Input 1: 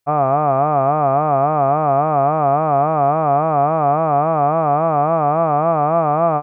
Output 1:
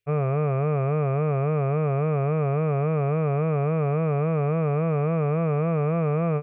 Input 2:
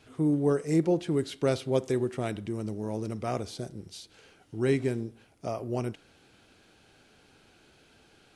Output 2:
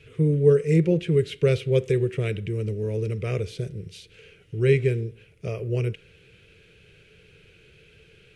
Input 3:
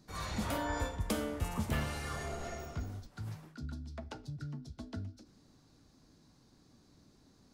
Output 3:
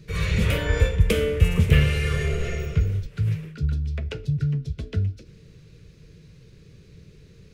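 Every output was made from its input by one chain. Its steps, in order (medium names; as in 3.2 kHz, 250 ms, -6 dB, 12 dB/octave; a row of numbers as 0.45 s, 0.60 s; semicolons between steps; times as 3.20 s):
FFT filter 170 Hz 0 dB, 260 Hz -20 dB, 450 Hz +1 dB, 770 Hz -25 dB, 2.5 kHz +1 dB, 4.5 kHz -13 dB; normalise loudness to -24 LUFS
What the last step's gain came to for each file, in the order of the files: +1.5 dB, +10.5 dB, +19.0 dB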